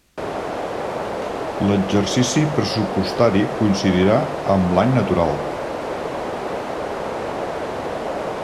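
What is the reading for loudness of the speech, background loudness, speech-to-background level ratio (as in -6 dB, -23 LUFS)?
-19.0 LUFS, -26.0 LUFS, 7.0 dB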